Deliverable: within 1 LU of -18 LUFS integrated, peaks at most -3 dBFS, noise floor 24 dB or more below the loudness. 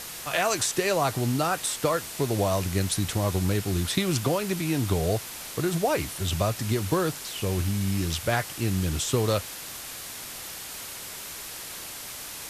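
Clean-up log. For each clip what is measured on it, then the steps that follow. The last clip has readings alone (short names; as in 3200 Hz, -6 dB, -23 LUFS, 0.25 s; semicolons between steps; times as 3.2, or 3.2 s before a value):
noise floor -39 dBFS; noise floor target -52 dBFS; loudness -27.5 LUFS; peak -9.5 dBFS; loudness target -18.0 LUFS
-> denoiser 13 dB, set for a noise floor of -39 dBFS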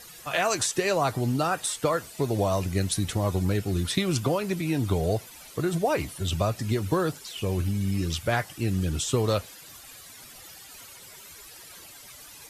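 noise floor -47 dBFS; noise floor target -51 dBFS
-> denoiser 6 dB, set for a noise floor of -47 dBFS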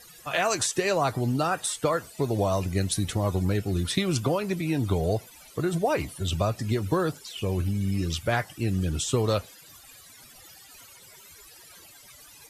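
noise floor -51 dBFS; loudness -27.0 LUFS; peak -10.0 dBFS; loudness target -18.0 LUFS
-> gain +9 dB; limiter -3 dBFS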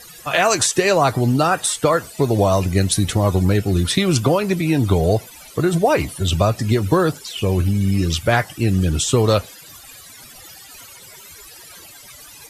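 loudness -18.0 LUFS; peak -3.0 dBFS; noise floor -42 dBFS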